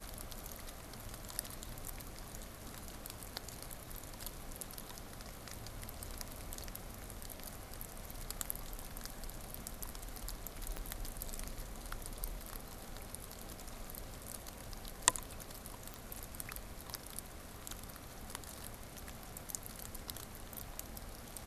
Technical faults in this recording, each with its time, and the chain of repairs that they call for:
10.77 pop -25 dBFS
15.94 pop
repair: de-click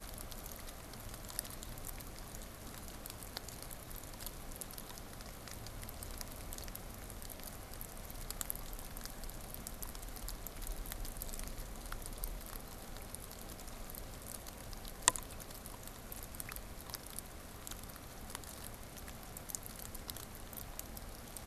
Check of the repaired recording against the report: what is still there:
10.77 pop

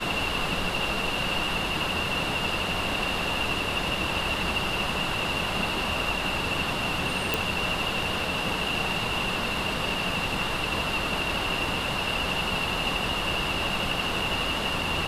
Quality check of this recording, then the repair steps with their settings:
7.34 pop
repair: de-click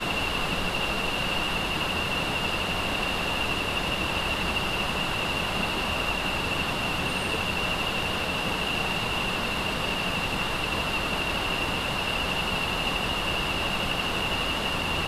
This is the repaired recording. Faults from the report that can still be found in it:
none

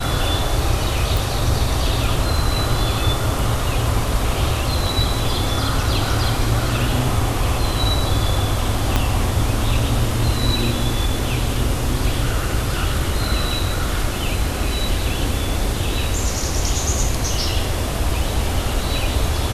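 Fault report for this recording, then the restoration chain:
1.17 pop
8.96 pop -3 dBFS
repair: de-click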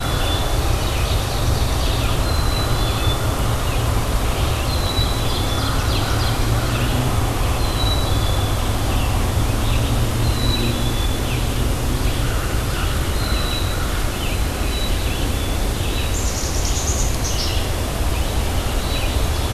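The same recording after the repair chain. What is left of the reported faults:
8.96 pop

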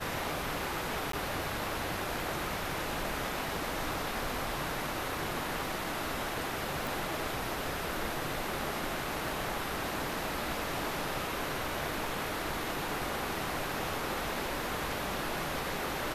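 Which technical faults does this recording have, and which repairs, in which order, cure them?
1.12–1.13 gap 13 ms
6.87 pop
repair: de-click; interpolate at 1.12, 13 ms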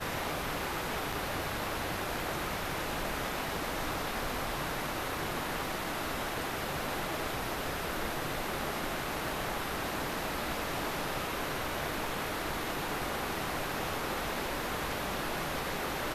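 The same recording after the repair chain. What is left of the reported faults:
none

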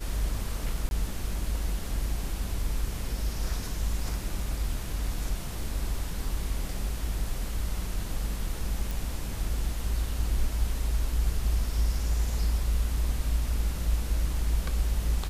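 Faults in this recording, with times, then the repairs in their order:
0.89–0.91 gap 21 ms
8.91 pop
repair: de-click; interpolate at 0.89, 21 ms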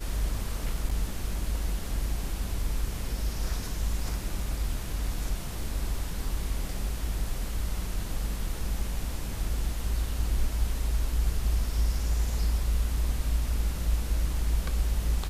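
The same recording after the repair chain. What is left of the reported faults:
none

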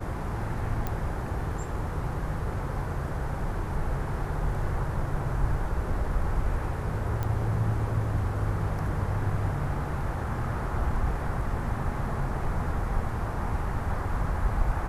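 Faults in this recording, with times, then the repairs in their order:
0.87 pop -17 dBFS
7.23 pop -18 dBFS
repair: de-click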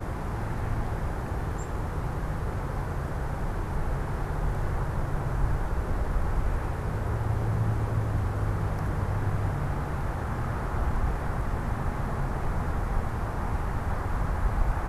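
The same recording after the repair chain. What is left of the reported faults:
none

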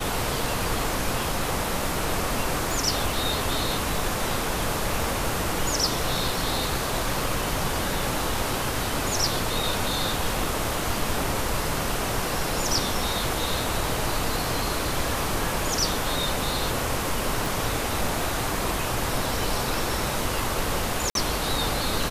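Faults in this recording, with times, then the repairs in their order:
2.71 pop
17.46 pop
21.1–21.15 gap 52 ms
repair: de-click; interpolate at 21.1, 52 ms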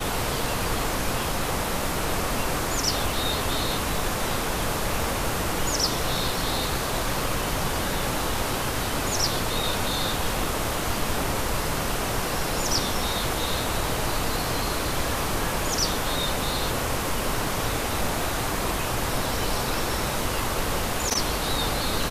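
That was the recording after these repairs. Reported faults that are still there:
2.71 pop

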